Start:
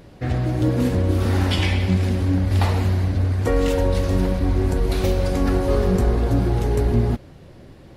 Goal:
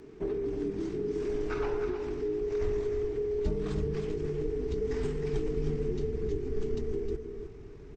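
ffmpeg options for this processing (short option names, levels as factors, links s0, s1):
-filter_complex "[0:a]asetrate=25476,aresample=44100,atempo=1.73107,acompressor=threshold=0.0501:ratio=6,afreqshift=-470,asubboost=boost=9:cutoff=78,asplit=2[s0][s1];[s1]aecho=0:1:312:0.398[s2];[s0][s2]amix=inputs=2:normalize=0,volume=0.668"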